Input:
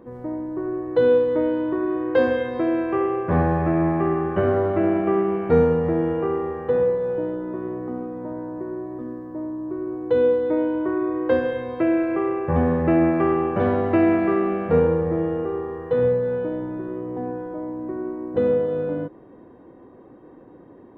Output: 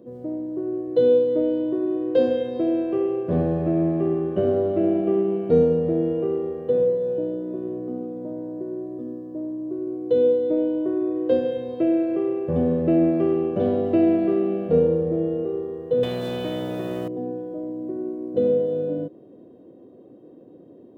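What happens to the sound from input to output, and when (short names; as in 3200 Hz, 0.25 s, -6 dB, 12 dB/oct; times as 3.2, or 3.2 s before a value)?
16.03–17.08 spectral compressor 4:1
whole clip: HPF 130 Hz 12 dB/oct; band shelf 1400 Hz -15 dB; notch 810 Hz, Q 17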